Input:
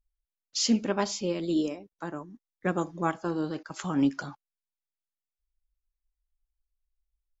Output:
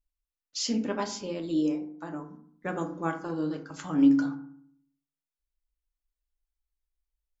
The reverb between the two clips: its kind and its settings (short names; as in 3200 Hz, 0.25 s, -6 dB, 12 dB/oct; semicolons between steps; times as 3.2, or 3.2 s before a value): FDN reverb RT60 0.6 s, low-frequency decay 1.4×, high-frequency decay 0.45×, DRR 4 dB; gain -4.5 dB